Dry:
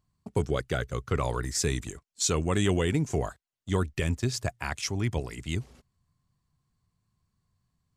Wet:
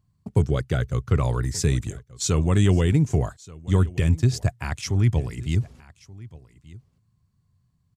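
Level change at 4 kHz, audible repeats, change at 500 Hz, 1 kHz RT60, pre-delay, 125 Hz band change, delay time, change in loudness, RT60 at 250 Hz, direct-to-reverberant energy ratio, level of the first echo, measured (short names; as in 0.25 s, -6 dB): 0.0 dB, 1, +2.0 dB, none, none, +10.0 dB, 1.18 s, +6.5 dB, none, none, -21.0 dB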